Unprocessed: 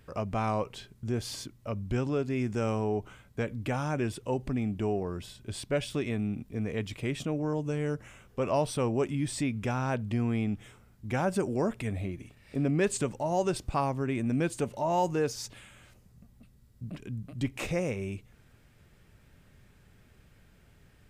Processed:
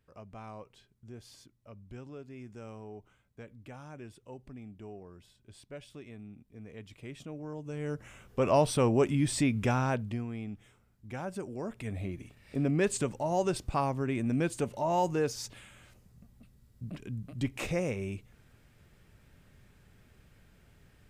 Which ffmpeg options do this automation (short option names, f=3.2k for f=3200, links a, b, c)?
-af "volume=11.5dB,afade=t=in:st=6.5:d=1.15:silence=0.473151,afade=t=in:st=7.65:d=0.85:silence=0.237137,afade=t=out:st=9.72:d=0.54:silence=0.237137,afade=t=in:st=11.63:d=0.52:silence=0.375837"